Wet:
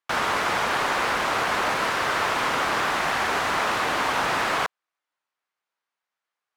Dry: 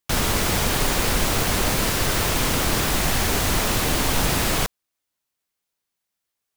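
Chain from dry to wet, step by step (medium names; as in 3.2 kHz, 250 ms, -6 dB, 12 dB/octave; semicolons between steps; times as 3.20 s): band-pass filter 1.2 kHz, Q 1.1; trim +5.5 dB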